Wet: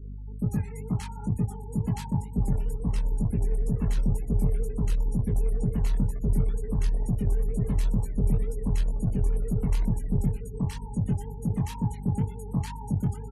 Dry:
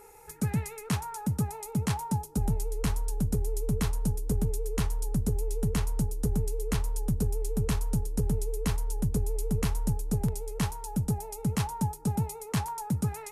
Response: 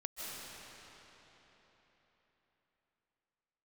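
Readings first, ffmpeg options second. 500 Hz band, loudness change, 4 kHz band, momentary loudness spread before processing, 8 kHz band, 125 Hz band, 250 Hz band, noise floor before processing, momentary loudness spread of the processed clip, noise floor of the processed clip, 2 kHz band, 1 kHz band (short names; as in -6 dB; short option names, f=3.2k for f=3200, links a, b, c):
-1.5 dB, +2.0 dB, -7.0 dB, 3 LU, -9.5 dB, +2.5 dB, +1.5 dB, -44 dBFS, 4 LU, -38 dBFS, -6.5 dB, -5.5 dB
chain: -filter_complex "[0:a]acrossover=split=330|970[a][b][c];[a]acontrast=45[d];[d][b][c]amix=inputs=3:normalize=0,aeval=exprs='val(0)+0.0178*(sin(2*PI*50*n/s)+sin(2*PI*2*50*n/s)/2+sin(2*PI*3*50*n/s)/3+sin(2*PI*4*50*n/s)/4+sin(2*PI*5*50*n/s)/5)':c=same,acrusher=bits=4:mode=log:mix=0:aa=0.000001,acrossover=split=1200[e][f];[f]adelay=100[g];[e][g]amix=inputs=2:normalize=0,asplit=2[h][i];[1:a]atrim=start_sample=2205[j];[i][j]afir=irnorm=-1:irlink=0,volume=-14dB[k];[h][k]amix=inputs=2:normalize=0,afftfilt=real='re*gte(hypot(re,im),0.0224)':imag='im*gte(hypot(re,im),0.0224)':win_size=1024:overlap=0.75,aeval=exprs='0.335*(cos(1*acos(clip(val(0)/0.335,-1,1)))-cos(1*PI/2))+0.015*(cos(2*acos(clip(val(0)/0.335,-1,1)))-cos(2*PI/2))+0.00841*(cos(3*acos(clip(val(0)/0.335,-1,1)))-cos(3*PI/2))+0.00944*(cos(6*acos(clip(val(0)/0.335,-1,1)))-cos(6*PI/2))+0.00841*(cos(8*acos(clip(val(0)/0.335,-1,1)))-cos(8*PI/2))':c=same,flanger=delay=17:depth=5.6:speed=2.1,volume=-1.5dB"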